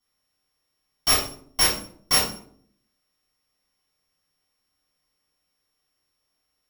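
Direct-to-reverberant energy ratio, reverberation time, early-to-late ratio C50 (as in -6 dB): -9.0 dB, 0.60 s, 5.5 dB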